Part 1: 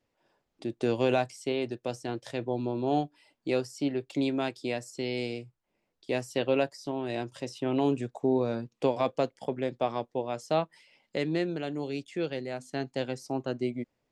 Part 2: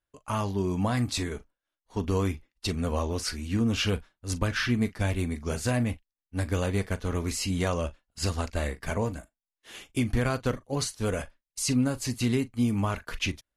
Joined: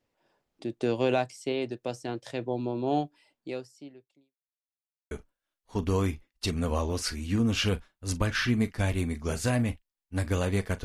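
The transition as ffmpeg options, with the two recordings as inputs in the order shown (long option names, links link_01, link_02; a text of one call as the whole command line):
ffmpeg -i cue0.wav -i cue1.wav -filter_complex "[0:a]apad=whole_dur=10.84,atrim=end=10.84,asplit=2[link_01][link_02];[link_01]atrim=end=4.35,asetpts=PTS-STARTPTS,afade=type=out:start_time=3.09:duration=1.26:curve=qua[link_03];[link_02]atrim=start=4.35:end=5.11,asetpts=PTS-STARTPTS,volume=0[link_04];[1:a]atrim=start=1.32:end=7.05,asetpts=PTS-STARTPTS,afade=type=in:duration=0.004:curve=hsin[link_05];[link_03][link_04][link_05]concat=n=3:v=0:a=1" out.wav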